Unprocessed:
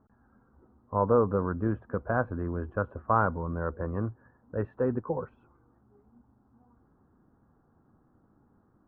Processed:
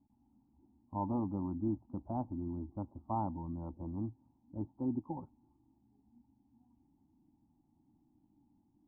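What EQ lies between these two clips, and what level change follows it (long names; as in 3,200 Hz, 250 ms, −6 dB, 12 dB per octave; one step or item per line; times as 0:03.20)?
dynamic equaliser 630 Hz, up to +5 dB, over −37 dBFS, Q 1
formant resonators in series u
phaser with its sweep stopped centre 1,700 Hz, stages 6
+5.5 dB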